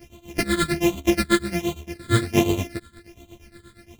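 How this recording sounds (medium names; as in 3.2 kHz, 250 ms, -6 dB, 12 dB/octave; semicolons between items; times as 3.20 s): a buzz of ramps at a fixed pitch in blocks of 128 samples; phasing stages 8, 1.3 Hz, lowest notch 780–1600 Hz; tremolo triangle 8.5 Hz, depth 95%; a shimmering, thickened sound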